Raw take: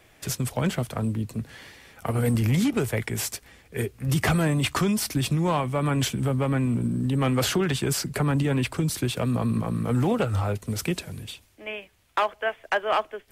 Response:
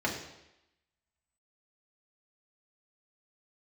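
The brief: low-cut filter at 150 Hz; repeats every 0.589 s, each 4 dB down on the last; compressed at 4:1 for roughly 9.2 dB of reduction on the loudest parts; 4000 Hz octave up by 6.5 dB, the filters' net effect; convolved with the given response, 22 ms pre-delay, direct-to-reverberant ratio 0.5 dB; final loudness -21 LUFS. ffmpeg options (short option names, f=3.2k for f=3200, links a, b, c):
-filter_complex "[0:a]highpass=150,equalizer=f=4k:t=o:g=8.5,acompressor=threshold=-30dB:ratio=4,aecho=1:1:589|1178|1767|2356|2945|3534|4123|4712|5301:0.631|0.398|0.25|0.158|0.0994|0.0626|0.0394|0.0249|0.0157,asplit=2[a][b];[1:a]atrim=start_sample=2205,adelay=22[c];[b][c]afir=irnorm=-1:irlink=0,volume=-9.5dB[d];[a][d]amix=inputs=2:normalize=0,volume=6.5dB"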